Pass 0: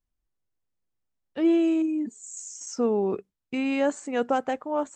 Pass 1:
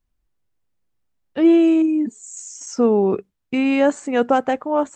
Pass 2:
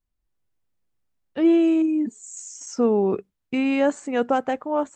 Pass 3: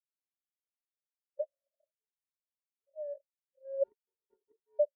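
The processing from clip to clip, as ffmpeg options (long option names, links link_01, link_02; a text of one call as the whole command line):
ffmpeg -i in.wav -af "bass=frequency=250:gain=2,treble=frequency=4000:gain=-4,volume=7.5dB" out.wav
ffmpeg -i in.wav -af "dynaudnorm=framelen=110:gausssize=5:maxgain=5dB,volume=-7.5dB" out.wav
ffmpeg -i in.wav -af "asuperpass=centerf=580:order=12:qfactor=7.4,anlmdn=1,afftfilt=real='re*gt(sin(2*PI*0.52*pts/sr)*(1-2*mod(floor(b*sr/1024/460),2)),0)':imag='im*gt(sin(2*PI*0.52*pts/sr)*(1-2*mod(floor(b*sr/1024/460),2)),0)':win_size=1024:overlap=0.75" out.wav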